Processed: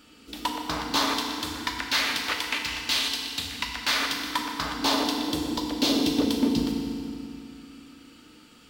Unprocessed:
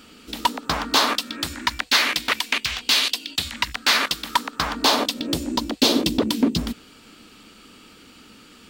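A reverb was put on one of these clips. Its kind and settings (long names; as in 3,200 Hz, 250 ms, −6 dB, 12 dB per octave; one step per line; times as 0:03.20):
feedback delay network reverb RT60 2.4 s, low-frequency decay 1.25×, high-frequency decay 0.85×, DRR 0.5 dB
level −8 dB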